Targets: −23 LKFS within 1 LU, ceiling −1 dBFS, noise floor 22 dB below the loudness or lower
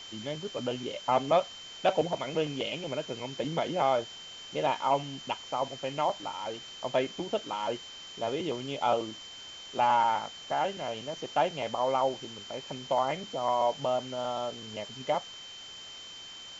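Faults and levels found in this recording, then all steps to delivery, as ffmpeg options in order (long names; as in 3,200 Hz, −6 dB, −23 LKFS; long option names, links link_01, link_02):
interfering tone 3,100 Hz; level of the tone −44 dBFS; background noise floor −46 dBFS; target noise floor −54 dBFS; integrated loudness −31.5 LKFS; sample peak −14.0 dBFS; target loudness −23.0 LKFS
→ -af "bandreject=frequency=3100:width=30"
-af "afftdn=noise_reduction=8:noise_floor=-46"
-af "volume=8.5dB"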